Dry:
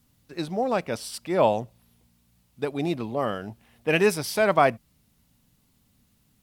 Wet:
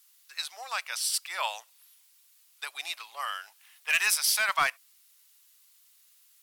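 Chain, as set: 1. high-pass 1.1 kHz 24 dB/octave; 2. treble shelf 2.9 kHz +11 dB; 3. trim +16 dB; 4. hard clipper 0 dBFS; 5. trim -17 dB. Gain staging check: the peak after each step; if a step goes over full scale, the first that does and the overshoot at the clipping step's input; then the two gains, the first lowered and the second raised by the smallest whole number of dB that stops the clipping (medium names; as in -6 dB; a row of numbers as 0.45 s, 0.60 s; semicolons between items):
-11.0 dBFS, -6.5 dBFS, +9.5 dBFS, 0.0 dBFS, -17.0 dBFS; step 3, 9.5 dB; step 3 +6 dB, step 5 -7 dB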